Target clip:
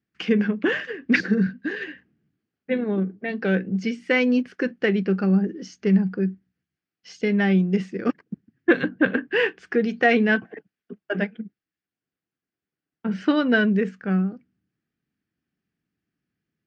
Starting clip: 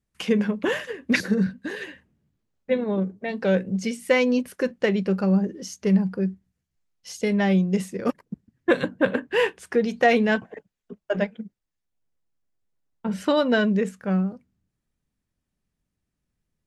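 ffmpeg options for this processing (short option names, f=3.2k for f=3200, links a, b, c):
-af "highpass=140,equalizer=f=310:t=q:w=4:g=4,equalizer=f=570:t=q:w=4:g=-9,equalizer=f=960:t=q:w=4:g=-10,equalizer=f=1.6k:t=q:w=4:g=4,equalizer=f=3.8k:t=q:w=4:g=-7,lowpass=f=4.7k:w=0.5412,lowpass=f=4.7k:w=1.3066,volume=2dB"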